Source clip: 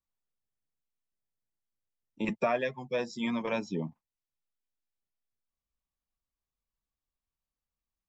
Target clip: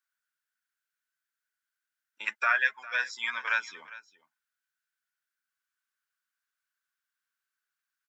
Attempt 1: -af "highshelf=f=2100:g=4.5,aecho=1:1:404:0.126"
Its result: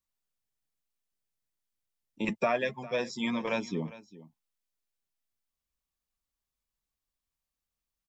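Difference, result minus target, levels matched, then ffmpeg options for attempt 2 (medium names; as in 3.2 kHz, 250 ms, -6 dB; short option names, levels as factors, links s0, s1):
2 kHz band -7.0 dB
-af "highpass=f=1500:t=q:w=11,highshelf=f=2100:g=4.5,aecho=1:1:404:0.126"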